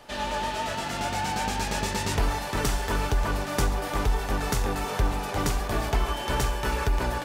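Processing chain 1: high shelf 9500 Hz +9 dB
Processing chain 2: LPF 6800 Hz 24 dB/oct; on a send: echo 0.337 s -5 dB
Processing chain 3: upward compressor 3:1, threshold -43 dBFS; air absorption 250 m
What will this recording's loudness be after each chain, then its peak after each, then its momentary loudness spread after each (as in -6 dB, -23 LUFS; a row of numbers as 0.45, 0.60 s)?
-27.5, -27.0, -29.0 LUFS; -10.5, -11.5, -13.0 dBFS; 2, 2, 3 LU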